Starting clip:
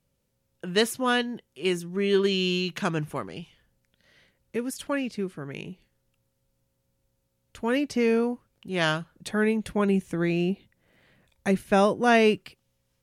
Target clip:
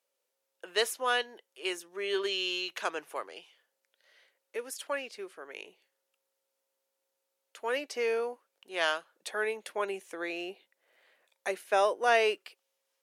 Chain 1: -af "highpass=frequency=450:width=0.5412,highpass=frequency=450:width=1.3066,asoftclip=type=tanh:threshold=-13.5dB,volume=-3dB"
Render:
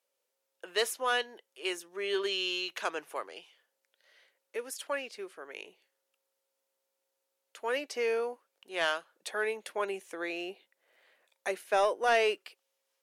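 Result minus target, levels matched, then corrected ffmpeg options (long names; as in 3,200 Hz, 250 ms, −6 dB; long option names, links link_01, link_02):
soft clipping: distortion +11 dB
-af "highpass=frequency=450:width=0.5412,highpass=frequency=450:width=1.3066,asoftclip=type=tanh:threshold=-6.5dB,volume=-3dB"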